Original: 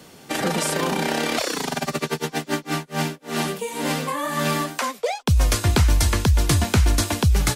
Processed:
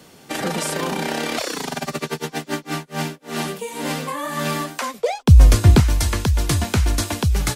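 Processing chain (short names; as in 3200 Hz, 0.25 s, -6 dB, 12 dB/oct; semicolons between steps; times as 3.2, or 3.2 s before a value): 4.94–5.8 low shelf 410 Hz +10.5 dB; gain -1 dB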